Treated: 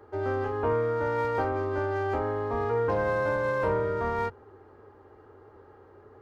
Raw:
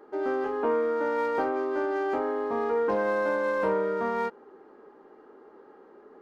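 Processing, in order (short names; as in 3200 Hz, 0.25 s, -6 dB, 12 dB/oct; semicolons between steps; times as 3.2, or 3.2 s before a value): octaver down 2 oct, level -1 dB; bell 220 Hz -4 dB 1.3 oct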